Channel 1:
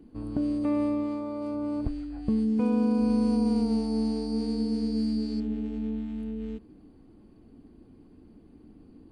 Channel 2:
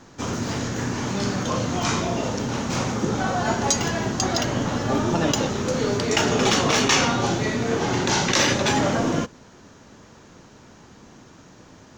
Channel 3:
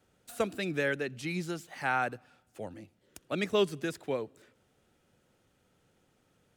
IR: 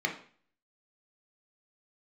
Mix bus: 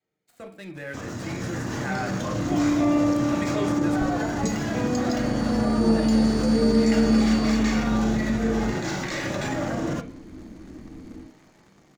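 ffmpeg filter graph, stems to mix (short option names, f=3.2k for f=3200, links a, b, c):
-filter_complex "[0:a]adelay=2150,volume=0dB,asplit=2[a][b];[b]volume=-10dB[c];[1:a]acompressor=threshold=-24dB:ratio=2,adelay=750,volume=-6.5dB,asplit=2[d][e];[e]volume=-16dB[f];[2:a]volume=-5.5dB,asplit=3[g][h][i];[h]volume=-13.5dB[j];[i]apad=whole_len=496882[k];[a][k]sidechaincompress=threshold=-53dB:ratio=8:attack=16:release=1410[l];[d][g]amix=inputs=2:normalize=0,aeval=exprs='sgn(val(0))*max(abs(val(0))-0.00299,0)':c=same,alimiter=level_in=5.5dB:limit=-24dB:level=0:latency=1:release=88,volume=-5.5dB,volume=0dB[m];[3:a]atrim=start_sample=2205[n];[c][f][j]amix=inputs=3:normalize=0[o];[o][n]afir=irnorm=-1:irlink=0[p];[l][m][p]amix=inputs=3:normalize=0,dynaudnorm=f=120:g=21:m=9.5dB"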